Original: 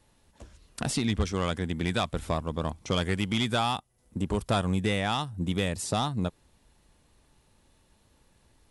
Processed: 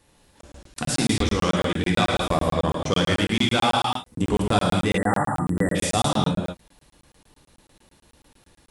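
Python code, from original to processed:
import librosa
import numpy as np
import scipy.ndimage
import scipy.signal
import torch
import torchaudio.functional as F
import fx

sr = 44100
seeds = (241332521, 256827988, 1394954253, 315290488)

p1 = fx.low_shelf(x, sr, hz=99.0, db=-7.0)
p2 = fx.notch(p1, sr, hz=670.0, q=21.0)
p3 = fx.rev_gated(p2, sr, seeds[0], gate_ms=270, shape='flat', drr_db=-2.0)
p4 = fx.rider(p3, sr, range_db=10, speed_s=0.5)
p5 = p3 + F.gain(torch.from_numpy(p4), 2.0).numpy()
p6 = fx.spec_erase(p5, sr, start_s=4.98, length_s=0.77, low_hz=2000.0, high_hz=7200.0)
p7 = fx.buffer_crackle(p6, sr, first_s=0.41, period_s=0.11, block=1024, kind='zero')
y = F.gain(torch.from_numpy(p7), -2.5).numpy()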